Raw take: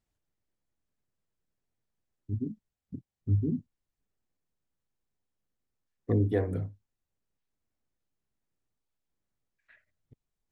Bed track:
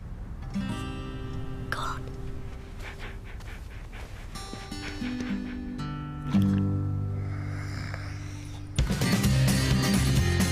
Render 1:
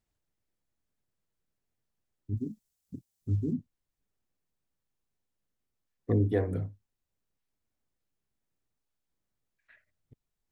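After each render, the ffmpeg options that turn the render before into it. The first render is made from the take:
ffmpeg -i in.wav -filter_complex "[0:a]asettb=1/sr,asplit=3[link_01][link_02][link_03];[link_01]atrim=end=2.374[link_04];[link_02]atrim=start=2.37:end=3.53,asetpts=PTS-STARTPTS,afade=type=in:duration=0.004:curve=qsin,afade=type=out:start_time=1.156:duration=0.004:curve=qsin,bass=frequency=250:gain=-3,treble=frequency=4000:gain=14[link_05];[link_03]atrim=start=3.526[link_06];[link_04][link_05]acrossfade=duration=0.004:curve1=hsin:curve2=qsin[link_07];[link_07][link_06]acrossfade=duration=0.004:curve1=qsin:curve2=hsin" out.wav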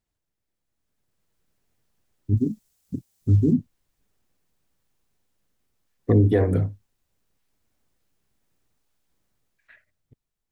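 ffmpeg -i in.wav -af "dynaudnorm=framelen=160:gausssize=13:maxgain=12dB,alimiter=limit=-9.5dB:level=0:latency=1:release=18" out.wav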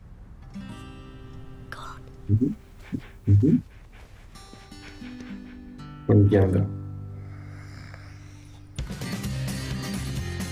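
ffmpeg -i in.wav -i bed.wav -filter_complex "[1:a]volume=-7dB[link_01];[0:a][link_01]amix=inputs=2:normalize=0" out.wav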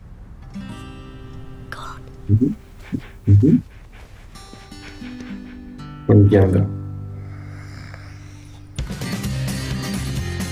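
ffmpeg -i in.wav -af "volume=6dB" out.wav

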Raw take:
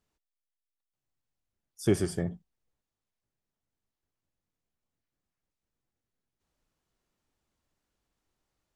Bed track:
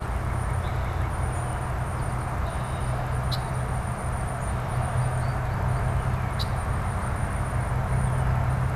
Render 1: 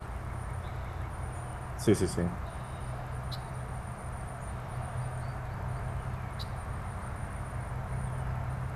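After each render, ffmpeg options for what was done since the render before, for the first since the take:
ffmpeg -i in.wav -i bed.wav -filter_complex "[1:a]volume=-10.5dB[link_01];[0:a][link_01]amix=inputs=2:normalize=0" out.wav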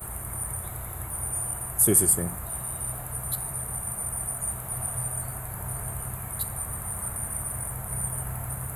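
ffmpeg -i in.wav -af "aexciter=amount=15.1:drive=9.5:freq=8400" out.wav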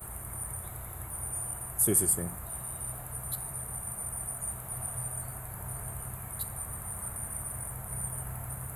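ffmpeg -i in.wav -af "volume=-5.5dB" out.wav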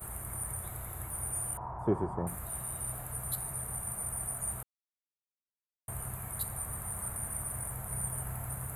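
ffmpeg -i in.wav -filter_complex "[0:a]asettb=1/sr,asplit=3[link_01][link_02][link_03];[link_01]atrim=end=1.574[link_04];[link_02]atrim=start=1.57:end=2.27,asetpts=PTS-STARTPTS,afade=type=in:duration=0.004:curve=qsin,afade=type=out:start_time=0.696:duration=0.004:curve=qsin,lowpass=frequency=940:width_type=q:width=5.5[link_05];[link_03]atrim=start=2.266[link_06];[link_04][link_05]acrossfade=duration=0.004:curve1=hsin:curve2=qsin[link_07];[link_07][link_06]acrossfade=duration=0.004:curve1=qsin:curve2=hsin,asplit=3[link_08][link_09][link_10];[link_08]atrim=end=4.63,asetpts=PTS-STARTPTS,afade=type=out:start_time=4.626:duration=0.004:curve=hsin[link_11];[link_09]atrim=start=4.63:end=5.88,asetpts=PTS-STARTPTS,volume=0[link_12];[link_10]atrim=start=5.88,asetpts=PTS-STARTPTS,afade=type=in:duration=0.004:curve=hsin[link_13];[link_11][link_12][link_13]concat=n=3:v=0:a=1" out.wav

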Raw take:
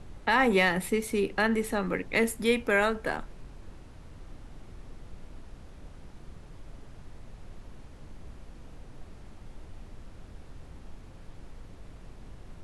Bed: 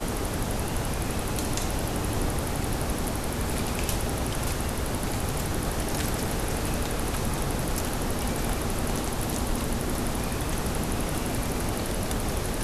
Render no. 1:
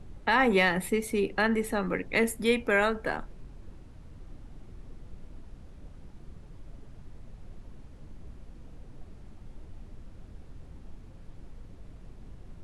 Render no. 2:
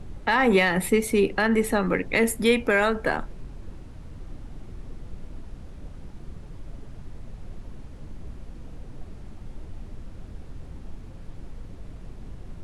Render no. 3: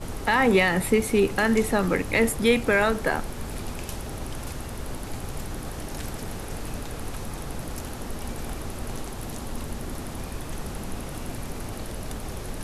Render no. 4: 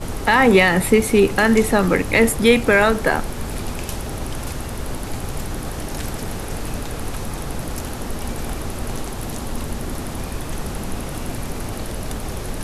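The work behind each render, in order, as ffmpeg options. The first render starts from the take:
ffmpeg -i in.wav -af "afftdn=noise_reduction=6:noise_floor=-49" out.wav
ffmpeg -i in.wav -af "acontrast=81,alimiter=limit=-10dB:level=0:latency=1:release=134" out.wav
ffmpeg -i in.wav -i bed.wav -filter_complex "[1:a]volume=-7dB[link_01];[0:a][link_01]amix=inputs=2:normalize=0" out.wav
ffmpeg -i in.wav -af "volume=6.5dB" out.wav

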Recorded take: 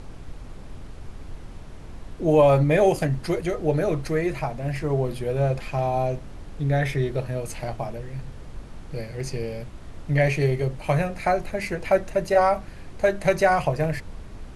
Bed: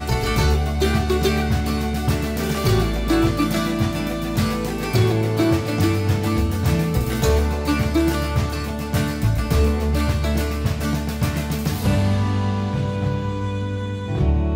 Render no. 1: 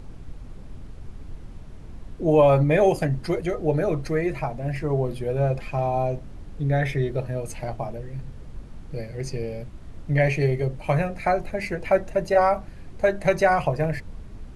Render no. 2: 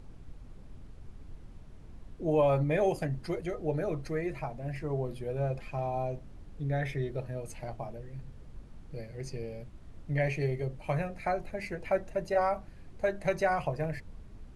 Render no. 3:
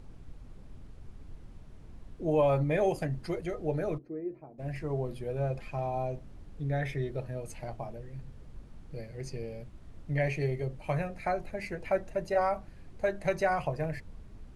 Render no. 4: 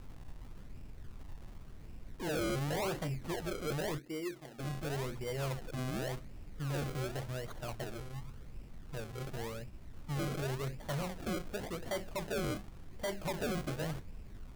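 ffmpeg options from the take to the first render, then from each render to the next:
ffmpeg -i in.wav -af "afftdn=noise_reduction=6:noise_floor=-40" out.wav
ffmpeg -i in.wav -af "volume=-9dB" out.wav
ffmpeg -i in.wav -filter_complex "[0:a]asplit=3[link_01][link_02][link_03];[link_01]afade=type=out:start_time=3.97:duration=0.02[link_04];[link_02]bandpass=frequency=320:width_type=q:width=2.7,afade=type=in:start_time=3.97:duration=0.02,afade=type=out:start_time=4.58:duration=0.02[link_05];[link_03]afade=type=in:start_time=4.58:duration=0.02[link_06];[link_04][link_05][link_06]amix=inputs=3:normalize=0" out.wav
ffmpeg -i in.wav -af "acrusher=samples=33:mix=1:aa=0.000001:lfo=1:lforange=33:lforate=0.9,asoftclip=type=tanh:threshold=-32.5dB" out.wav

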